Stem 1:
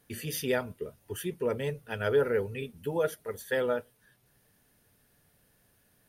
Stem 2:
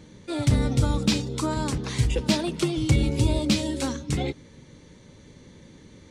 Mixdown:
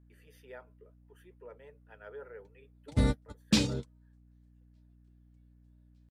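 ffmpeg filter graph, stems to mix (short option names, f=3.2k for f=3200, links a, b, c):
-filter_complex "[0:a]acrossover=split=420 2200:gain=0.1 1 0.158[a][b][c];[a][b][c]amix=inputs=3:normalize=0,aeval=exprs='val(0)+0.00708*(sin(2*PI*60*n/s)+sin(2*PI*2*60*n/s)/2+sin(2*PI*3*60*n/s)/3+sin(2*PI*4*60*n/s)/4+sin(2*PI*5*60*n/s)/5)':c=same,volume=-16dB,asplit=2[d][e];[1:a]adelay=2450,volume=-2.5dB[f];[e]apad=whole_len=377240[g];[f][g]sidechaingate=range=-57dB:threshold=-49dB:ratio=16:detection=peak[h];[d][h]amix=inputs=2:normalize=0"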